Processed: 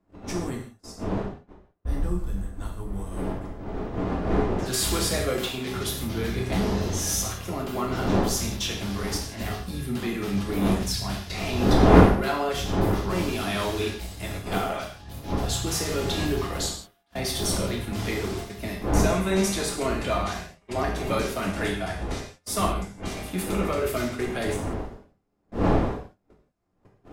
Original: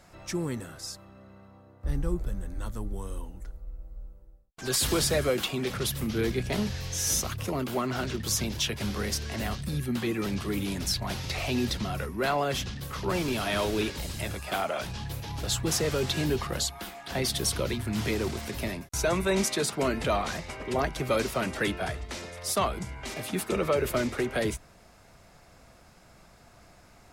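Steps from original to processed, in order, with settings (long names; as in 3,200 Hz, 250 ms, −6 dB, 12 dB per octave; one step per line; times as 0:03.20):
wind on the microphone 450 Hz −30 dBFS
noise gate −33 dBFS, range −32 dB
reverb whose tail is shaped and stops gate 200 ms falling, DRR −1.5 dB
level −3 dB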